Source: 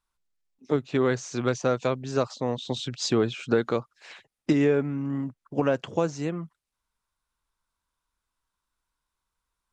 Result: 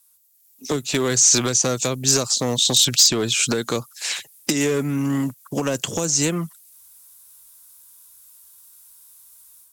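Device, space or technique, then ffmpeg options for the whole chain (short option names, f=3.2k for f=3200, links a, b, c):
FM broadcast chain: -filter_complex "[0:a]highpass=46,dynaudnorm=f=310:g=3:m=9.5dB,acrossover=split=370|6800[a][b][c];[a]acompressor=threshold=-23dB:ratio=4[d];[b]acompressor=threshold=-27dB:ratio=4[e];[c]acompressor=threshold=-44dB:ratio=4[f];[d][e][f]amix=inputs=3:normalize=0,aemphasis=mode=production:type=75fm,alimiter=limit=-13.5dB:level=0:latency=1:release=234,asoftclip=type=hard:threshold=-18dB,lowpass=f=15k:w=0.5412,lowpass=f=15k:w=1.3066,aemphasis=mode=production:type=75fm,volume=3.5dB"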